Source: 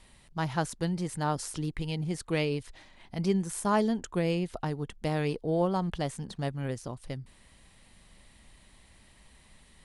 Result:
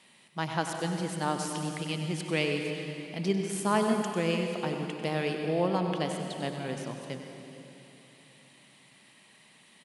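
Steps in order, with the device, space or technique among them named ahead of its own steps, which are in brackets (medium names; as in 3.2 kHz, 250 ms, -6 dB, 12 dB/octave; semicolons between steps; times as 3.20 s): PA in a hall (high-pass 160 Hz 24 dB/octave; peaking EQ 2.7 kHz +5.5 dB 1 oct; delay 96 ms -11 dB; reverberation RT60 2.9 s, pre-delay 120 ms, DRR 4.5 dB); trim -1 dB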